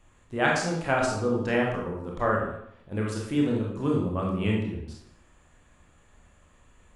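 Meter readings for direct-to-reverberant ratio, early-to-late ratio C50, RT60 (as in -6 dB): -2.5 dB, 2.5 dB, 0.70 s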